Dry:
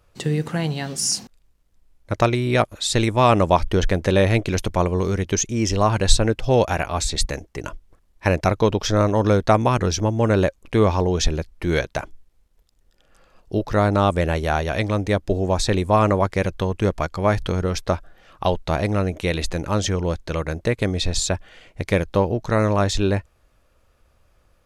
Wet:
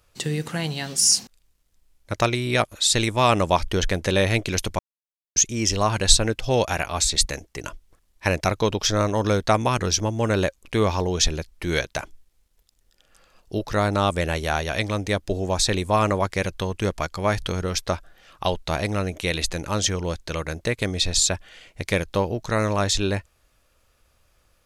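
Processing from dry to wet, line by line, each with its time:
4.79–5.36 mute
whole clip: high shelf 2000 Hz +10 dB; gain -4.5 dB

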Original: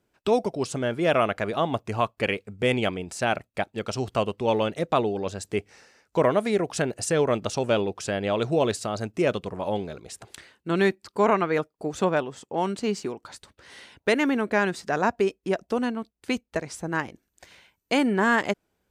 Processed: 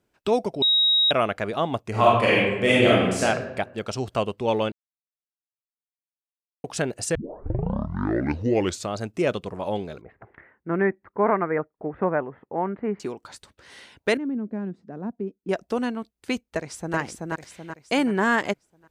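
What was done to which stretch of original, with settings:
0.62–1.11 bleep 3800 Hz -16 dBFS
1.9–3.23 reverb throw, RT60 1.1 s, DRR -7.5 dB
4.72–6.64 mute
7.15 tape start 1.81 s
10.01–13 elliptic low-pass 2000 Hz, stop band 70 dB
14.17–15.49 band-pass 210 Hz, Q 2.1
16.46–16.97 echo throw 0.38 s, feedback 45%, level -2 dB

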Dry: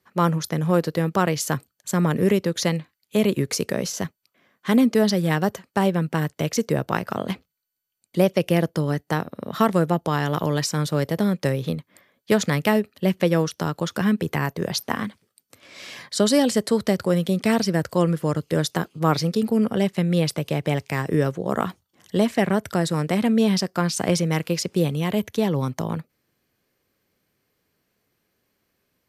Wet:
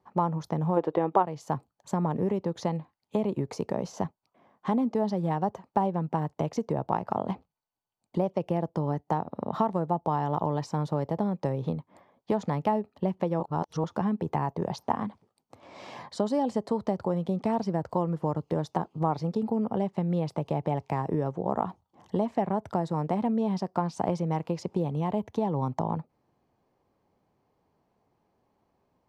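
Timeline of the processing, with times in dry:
0.77–1.23 spectral gain 300–3800 Hz +12 dB
13.4–13.84 reverse
whole clip: compressor 3:1, threshold -29 dBFS; EQ curve 540 Hz 0 dB, 870 Hz +10 dB, 1500 Hz -10 dB, 6500 Hz -15 dB, 13000 Hz -26 dB; gain +1.5 dB

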